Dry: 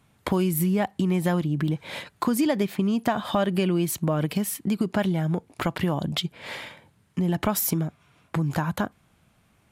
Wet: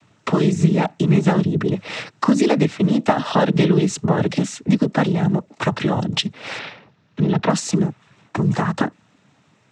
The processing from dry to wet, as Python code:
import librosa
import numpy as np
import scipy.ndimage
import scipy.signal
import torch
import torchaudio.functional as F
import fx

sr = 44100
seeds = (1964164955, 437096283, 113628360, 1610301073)

y = fx.noise_vocoder(x, sr, seeds[0], bands=12)
y = fx.lowpass(y, sr, hz=5200.0, slope=24, at=(6.59, 7.5))
y = F.gain(torch.from_numpy(y), 7.0).numpy()